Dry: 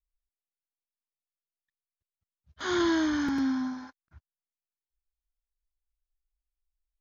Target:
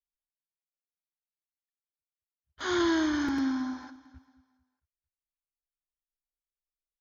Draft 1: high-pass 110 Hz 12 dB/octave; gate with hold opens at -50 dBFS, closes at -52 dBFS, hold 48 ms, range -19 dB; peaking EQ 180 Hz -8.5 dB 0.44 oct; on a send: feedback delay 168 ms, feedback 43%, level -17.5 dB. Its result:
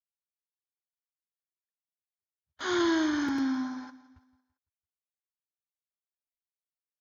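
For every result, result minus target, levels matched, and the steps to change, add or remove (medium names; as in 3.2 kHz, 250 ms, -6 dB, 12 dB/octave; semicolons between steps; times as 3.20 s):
echo 56 ms early; 125 Hz band -4.0 dB
change: feedback delay 224 ms, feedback 43%, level -17.5 dB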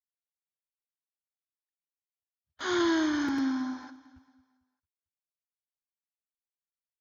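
125 Hz band -4.5 dB
remove: high-pass 110 Hz 12 dB/octave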